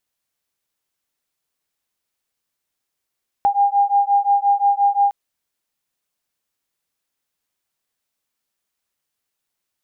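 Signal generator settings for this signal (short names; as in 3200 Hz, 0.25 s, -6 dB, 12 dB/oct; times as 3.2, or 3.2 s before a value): beating tones 803 Hz, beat 5.7 Hz, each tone -16.5 dBFS 1.66 s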